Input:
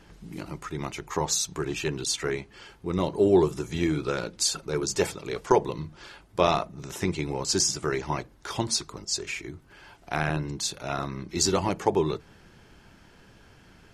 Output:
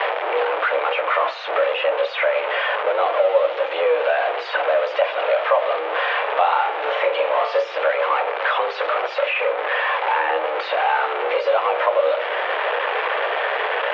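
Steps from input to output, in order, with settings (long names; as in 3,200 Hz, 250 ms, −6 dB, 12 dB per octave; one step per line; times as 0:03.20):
converter with a step at zero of −22 dBFS
in parallel at 0 dB: brickwall limiter −16 dBFS, peak gain reduction 11 dB
0:05.94–0:07.62: on the sum: flutter between parallel walls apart 6.2 metres, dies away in 0.31 s
on a send at −9 dB: convolution reverb RT60 0.50 s, pre-delay 3 ms
on the sum: single-sideband voice off tune +170 Hz 360–3,100 Hz
high-shelf EQ 2,400 Hz −8 dB
multiband upward and downward compressor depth 70%
level +1.5 dB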